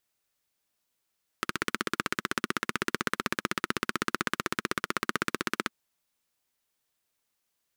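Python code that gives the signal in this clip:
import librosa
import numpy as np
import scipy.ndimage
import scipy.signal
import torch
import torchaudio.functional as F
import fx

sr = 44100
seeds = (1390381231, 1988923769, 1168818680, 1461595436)

y = fx.engine_single(sr, seeds[0], length_s=4.29, rpm=1900, resonances_hz=(230.0, 340.0, 1300.0))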